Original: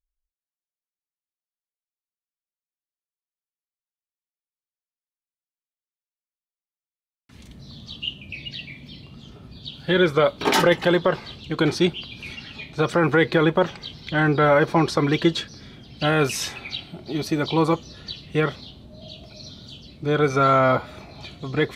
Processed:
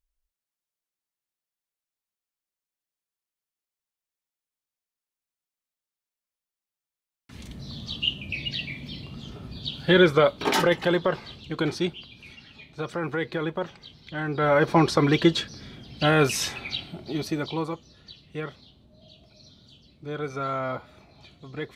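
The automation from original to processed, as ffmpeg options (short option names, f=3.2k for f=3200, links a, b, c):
-af "volume=14dB,afade=t=out:st=9.69:d=0.8:silence=0.421697,afade=t=out:st=11.36:d=0.86:silence=0.473151,afade=t=in:st=14.28:d=0.48:silence=0.298538,afade=t=out:st=16.85:d=0.86:silence=0.251189"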